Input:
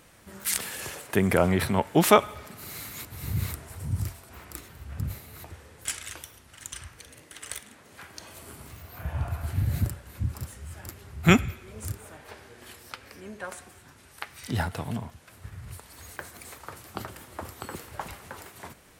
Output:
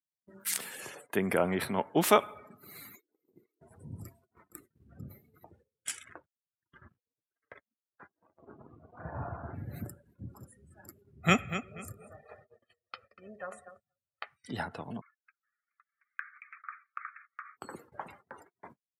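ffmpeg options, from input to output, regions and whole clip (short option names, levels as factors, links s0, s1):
-filter_complex "[0:a]asettb=1/sr,asplit=3[s0][s1][s2];[s0]atrim=end=2.954[s3];[s1]atrim=start=2.95:end=3.61,asetpts=PTS-STARTPTS,afade=t=in:d=0.004:c=qsin,afade=t=out:st=0.656:d=0.004:c=qsin,highpass=f=350:t=q:w=2.7,acompressor=threshold=0.00794:ratio=8:attack=3.2:release=140:knee=1:detection=peak[s4];[s2]atrim=start=3.606[s5];[s3][s4]acrossfade=d=0.004:c1=hsin:c2=qsin[s6];[s6][s5]acrossfade=d=0.004:c1=qsin:c2=hsin,asettb=1/sr,asplit=3[s7][s8][s9];[s7]atrim=end=6.044[s10];[s8]atrim=start=6.04:end=9.55,asetpts=PTS-STARTPTS,afade=t=in:d=0.004:c=qsin,afade=t=out:st=3.506:d=0.004:c=qsin,lowpass=1500,acontrast=69,aeval=exprs='sgn(val(0))*max(abs(val(0))-0.00447,0)':c=same[s11];[s9]atrim=start=9.546[s12];[s10][s11]acrossfade=d=0.004:c1=hsin:c2=qsin[s13];[s13][s12]acrossfade=d=0.004:c1=qsin:c2=hsin,asettb=1/sr,asplit=3[s14][s15][s16];[s14]atrim=end=11.204[s17];[s15]atrim=start=11.2:end=14.24,asetpts=PTS-STARTPTS,afade=t=in:d=0.004:c=qsin,afade=t=out:st=3.036:d=0.004:c=qsin,highshelf=f=5000:g=-3,aecho=1:1:1.6:0.56,atrim=end_sample=134064,aecho=1:1:240|480|720:0.282|0.0817|0.0237,atrim=end_sample=134064[s18];[s16]atrim=start=14.236[s19];[s17][s18]acrossfade=d=0.004:c1=hsin:c2=qsin[s20];[s20][s19]acrossfade=d=0.004:c1=qsin:c2=hsin,asettb=1/sr,asplit=3[s21][s22][s23];[s21]atrim=end=15.014[s24];[s22]atrim=start=15.01:end=17.57,asetpts=PTS-STARTPTS,afade=t=in:d=0.004:c=qsin,afade=t=out:st=2.556:d=0.004:c=qsin,acontrast=71,asuperpass=centerf=1700:order=20:qfactor=1.2[s25];[s23]atrim=start=17.566[s26];[s24][s25]acrossfade=d=0.004:c1=hsin:c2=qsin[s27];[s27][s26]acrossfade=d=0.004:c1=qsin:c2=hsin,afftdn=nr=30:nf=-43,agate=range=0.0501:threshold=0.00398:ratio=16:detection=peak,highpass=190,volume=0.562"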